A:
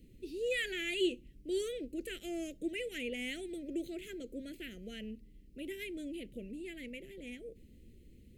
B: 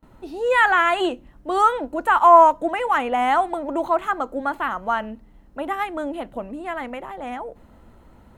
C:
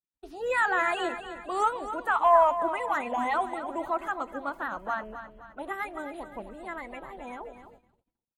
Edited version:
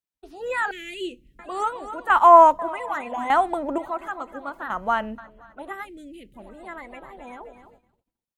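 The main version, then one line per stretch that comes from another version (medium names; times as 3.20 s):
C
0.71–1.39 s: from A
2.10–2.59 s: from B
3.30–3.78 s: from B
4.70–5.18 s: from B
5.85–6.39 s: from A, crossfade 0.10 s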